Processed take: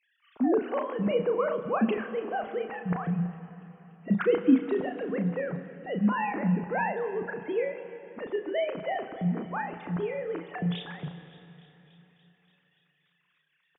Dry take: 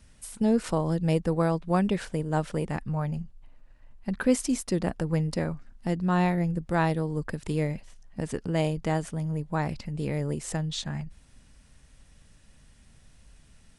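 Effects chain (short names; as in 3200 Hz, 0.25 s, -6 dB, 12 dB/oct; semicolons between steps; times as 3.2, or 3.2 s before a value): sine-wave speech; doubler 34 ms -7 dB; thin delay 0.288 s, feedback 72%, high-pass 2300 Hz, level -17.5 dB; on a send at -10 dB: reverb RT60 3.4 s, pre-delay 28 ms; on the sum: gain -2.5 dB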